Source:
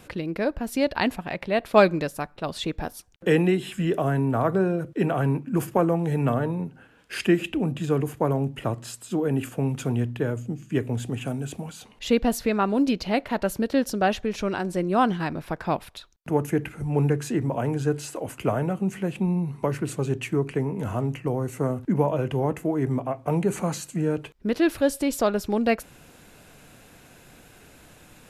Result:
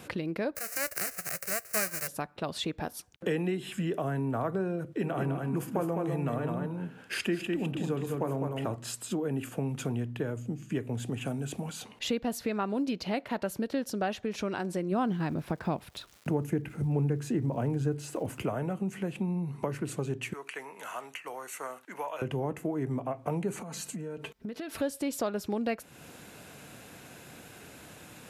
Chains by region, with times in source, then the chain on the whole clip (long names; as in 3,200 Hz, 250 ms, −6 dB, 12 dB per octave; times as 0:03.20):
0:00.55–0:02.07: spectral envelope flattened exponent 0.1 + phaser with its sweep stopped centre 930 Hz, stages 6
0:04.86–0:08.76: hum removal 62.23 Hz, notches 24 + single-tap delay 205 ms −5 dB
0:14.91–0:18.42: low-shelf EQ 420 Hz +9 dB + surface crackle 420 per second −45 dBFS
0:20.33–0:22.22: high-pass filter 1,200 Hz + notch filter 5,000 Hz, Q 13
0:23.62–0:24.81: comb filter 4.5 ms, depth 45% + downward compressor 16 to 1, threshold −35 dBFS
whole clip: high-pass filter 91 Hz; downward compressor 2.5 to 1, threshold −35 dBFS; level +2 dB